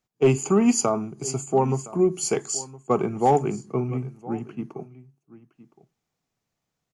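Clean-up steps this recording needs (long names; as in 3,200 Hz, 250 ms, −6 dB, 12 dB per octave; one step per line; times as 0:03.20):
clipped peaks rebuilt −10.5 dBFS
echo removal 1,015 ms −19 dB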